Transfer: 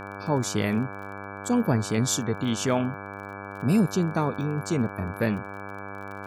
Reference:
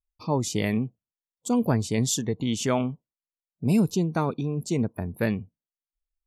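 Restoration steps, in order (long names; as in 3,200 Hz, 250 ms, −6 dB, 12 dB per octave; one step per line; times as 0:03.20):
click removal
hum removal 99.4 Hz, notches 17
notch filter 2,300 Hz, Q 30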